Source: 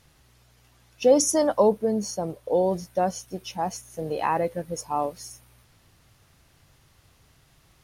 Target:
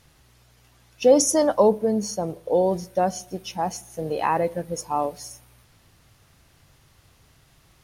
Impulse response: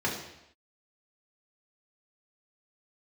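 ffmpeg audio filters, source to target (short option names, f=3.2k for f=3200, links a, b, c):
-filter_complex "[0:a]asplit=2[a][b];[1:a]atrim=start_sample=2205,adelay=24[c];[b][c]afir=irnorm=-1:irlink=0,volume=-31.5dB[d];[a][d]amix=inputs=2:normalize=0,volume=2dB"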